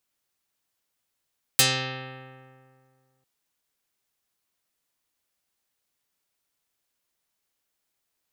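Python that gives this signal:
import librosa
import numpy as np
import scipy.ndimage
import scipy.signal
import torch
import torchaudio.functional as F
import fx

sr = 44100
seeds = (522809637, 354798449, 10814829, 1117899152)

y = fx.pluck(sr, length_s=1.65, note=48, decay_s=2.14, pick=0.39, brightness='dark')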